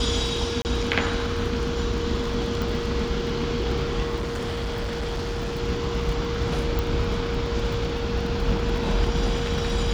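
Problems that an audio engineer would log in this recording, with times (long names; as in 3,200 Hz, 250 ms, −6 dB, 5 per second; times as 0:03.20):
surface crackle 27 per second −33 dBFS
whistle 470 Hz −29 dBFS
0:00.62–0:00.65: drop-out 29 ms
0:02.62: click −15 dBFS
0:04.15–0:05.61: clipping −24.5 dBFS
0:06.79: click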